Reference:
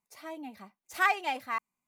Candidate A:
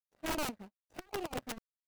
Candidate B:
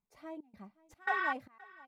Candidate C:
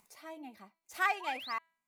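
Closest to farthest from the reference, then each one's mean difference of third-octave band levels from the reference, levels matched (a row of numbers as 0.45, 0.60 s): C, B, A; 1.0, 8.5, 15.5 dB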